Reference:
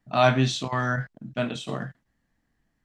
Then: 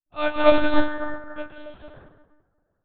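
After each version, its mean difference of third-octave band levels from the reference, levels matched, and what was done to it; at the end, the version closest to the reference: 12.0 dB: filtered feedback delay 158 ms, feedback 69%, low-pass 2.1 kHz, level -12 dB; plate-style reverb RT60 2.7 s, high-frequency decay 0.4×, pre-delay 120 ms, DRR -5 dB; monotone LPC vocoder at 8 kHz 300 Hz; upward expansion 2.5:1, over -35 dBFS; trim +2 dB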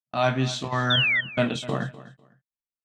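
5.0 dB: gate -35 dBFS, range -43 dB; gain riding within 4 dB 0.5 s; painted sound fall, 0.90–1.21 s, 1.8–3.7 kHz -22 dBFS; feedback delay 250 ms, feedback 21%, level -17 dB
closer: second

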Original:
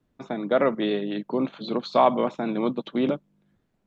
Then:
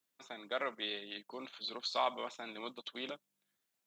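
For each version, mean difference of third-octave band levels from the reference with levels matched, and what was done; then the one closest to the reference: 8.5 dB: differentiator; trim +4 dB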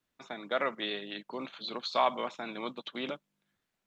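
5.5 dB: tilt shelf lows -10 dB, about 790 Hz; trim -8.5 dB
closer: second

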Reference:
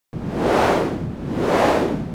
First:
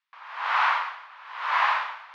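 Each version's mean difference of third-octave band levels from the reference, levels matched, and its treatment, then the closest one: 18.5 dB: elliptic high-pass 1 kHz, stop band 70 dB; distance through air 310 m; trim +4.5 dB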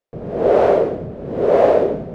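9.0 dB: low-pass 2 kHz 6 dB/octave; high-order bell 520 Hz +11.5 dB 1 oct; trim -4 dB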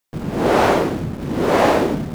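1.5 dB: hum notches 60/120/180 Hz; in parallel at -11 dB: bit crusher 5-bit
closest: third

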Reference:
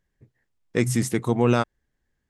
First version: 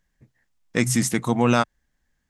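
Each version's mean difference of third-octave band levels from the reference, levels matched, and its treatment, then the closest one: 3.0 dB: fifteen-band graphic EQ 100 Hz -9 dB, 400 Hz -9 dB, 6.3 kHz +3 dB; trim +4.5 dB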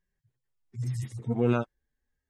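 8.0 dB: harmonic-percussive separation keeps harmonic; trim -4.5 dB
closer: first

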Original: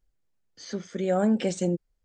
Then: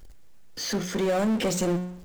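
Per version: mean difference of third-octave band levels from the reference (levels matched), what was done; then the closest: 10.5 dB: hum notches 60/120/180/240/300/360/420/480/540 Hz; compression, threshold -24 dBFS, peak gain reduction 5.5 dB; power-law waveshaper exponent 0.5; on a send: thinning echo 61 ms, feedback 65%, level -24 dB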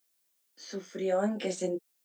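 4.0 dB: high-pass 230 Hz 24 dB/octave; band-stop 440 Hz, Q 12; added noise blue -71 dBFS; chorus 1.6 Hz, delay 19.5 ms, depth 2.6 ms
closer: second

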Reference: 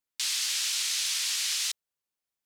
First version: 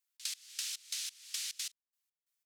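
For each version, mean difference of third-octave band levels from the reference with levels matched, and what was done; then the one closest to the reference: 6.5 dB: treble shelf 5.1 kHz +4.5 dB; trance gate "xx.x...xx..xx..." 179 bpm -24 dB; compression 12:1, threshold -36 dBFS, peak gain reduction 12.5 dB; high-pass 1.3 kHz 12 dB/octave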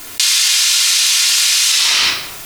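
1.5 dB: simulated room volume 3400 m³, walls furnished, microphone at 3.2 m; flange 1.2 Hz, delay 5.9 ms, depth 3.3 ms, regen -77%; loudness maximiser +24 dB; level flattener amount 100%; trim -3.5 dB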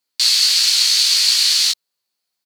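4.0 dB: high-pass 170 Hz 6 dB/octave; peaking EQ 4.4 kHz +13 dB 0.31 oct; in parallel at -3 dB: short-mantissa float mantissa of 2-bit; on the sum: doubling 18 ms -4 dB; trim +3 dB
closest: second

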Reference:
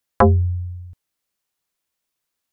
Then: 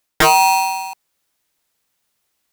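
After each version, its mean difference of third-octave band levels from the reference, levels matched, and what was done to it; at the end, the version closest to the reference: 21.0 dB: reverse; compression 6:1, threshold -20 dBFS, peak gain reduction 10.5 dB; reverse; polarity switched at an audio rate 860 Hz; trim +9 dB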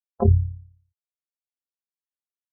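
3.5 dB: AM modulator 35 Hz, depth 75%; spectral contrast expander 2.5:1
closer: second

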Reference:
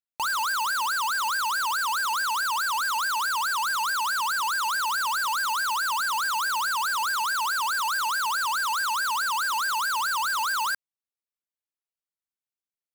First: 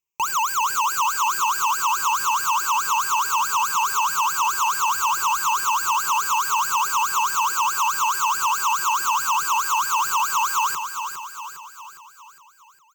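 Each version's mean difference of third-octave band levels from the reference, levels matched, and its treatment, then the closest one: 5.0 dB: rippled EQ curve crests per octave 0.74, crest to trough 18 dB; peak limiter -19 dBFS, peak gain reduction 6 dB; on a send: feedback delay 408 ms, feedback 52%, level -8 dB; on the sum: trim +3.5 dB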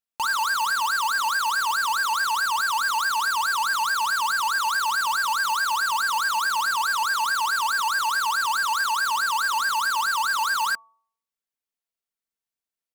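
2.0 dB: comb 4.4 ms, depth 42%; de-hum 225.2 Hz, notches 5; loudspeaker Doppler distortion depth 0.12 ms; trim +1.5 dB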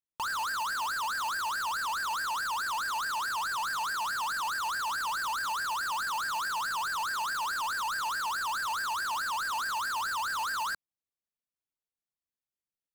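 3.5 dB: bass shelf 440 Hz +10 dB; loudspeaker Doppler distortion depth 0.46 ms; trim -7 dB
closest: second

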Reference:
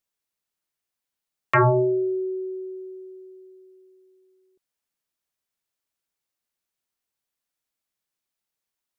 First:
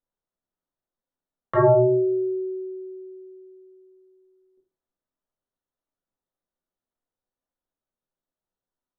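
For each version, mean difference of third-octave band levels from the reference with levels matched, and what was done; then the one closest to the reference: 1.0 dB: dynamic bell 220 Hz, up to +6 dB, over -37 dBFS, Q 1.4; boxcar filter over 18 samples; simulated room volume 130 m³, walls furnished, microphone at 1.9 m; trim -2 dB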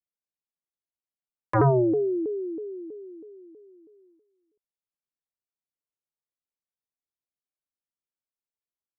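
2.5 dB: Bessel low-pass 760 Hz, order 2; gate -60 dBFS, range -10 dB; vibrato with a chosen wave saw down 3.1 Hz, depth 250 cents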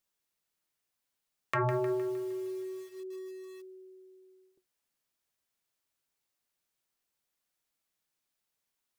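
9.0 dB: compression 2:1, threshold -42 dBFS, peak gain reduction 14 dB; flange 0.27 Hz, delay 5.3 ms, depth 3 ms, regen -72%; bit-crushed delay 154 ms, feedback 55%, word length 9-bit, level -9 dB; trim +5.5 dB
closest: first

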